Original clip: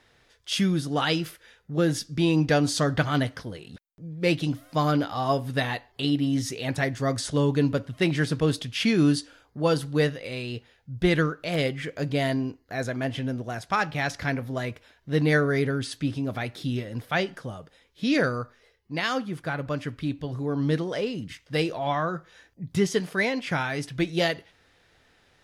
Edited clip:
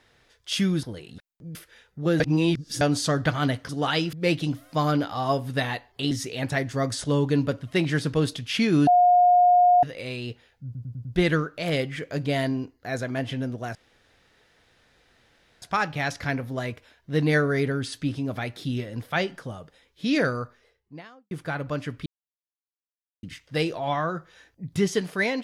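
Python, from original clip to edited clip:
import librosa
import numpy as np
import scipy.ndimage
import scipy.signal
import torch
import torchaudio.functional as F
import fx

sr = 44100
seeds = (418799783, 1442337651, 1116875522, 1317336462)

y = fx.studio_fade_out(x, sr, start_s=18.42, length_s=0.88)
y = fx.edit(y, sr, fx.swap(start_s=0.83, length_s=0.44, other_s=3.41, other_length_s=0.72),
    fx.reverse_span(start_s=1.92, length_s=0.61),
    fx.cut(start_s=6.11, length_s=0.26),
    fx.bleep(start_s=9.13, length_s=0.96, hz=715.0, db=-13.5),
    fx.stutter(start_s=10.91, slice_s=0.1, count=5),
    fx.insert_room_tone(at_s=13.61, length_s=1.87),
    fx.silence(start_s=20.05, length_s=1.17), tone=tone)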